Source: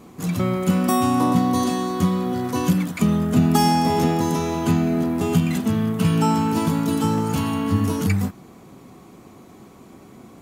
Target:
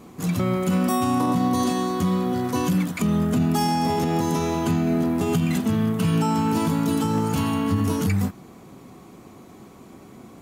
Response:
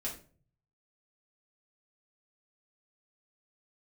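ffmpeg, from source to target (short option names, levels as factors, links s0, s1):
-af "alimiter=limit=0.211:level=0:latency=1:release=37"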